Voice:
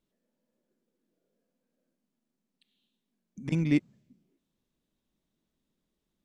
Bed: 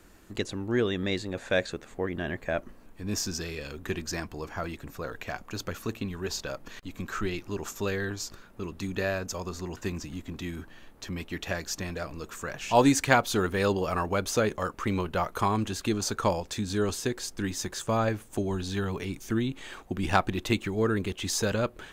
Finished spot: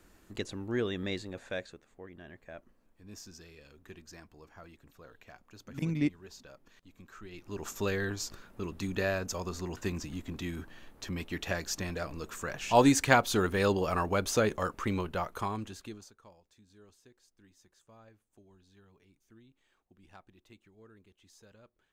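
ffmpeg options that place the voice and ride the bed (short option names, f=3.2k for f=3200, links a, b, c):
-filter_complex "[0:a]adelay=2300,volume=-4.5dB[a];[1:a]volume=10.5dB,afade=t=out:st=1.09:d=0.73:silence=0.251189,afade=t=in:st=7.29:d=0.49:silence=0.158489,afade=t=out:st=14.63:d=1.5:silence=0.0334965[b];[a][b]amix=inputs=2:normalize=0"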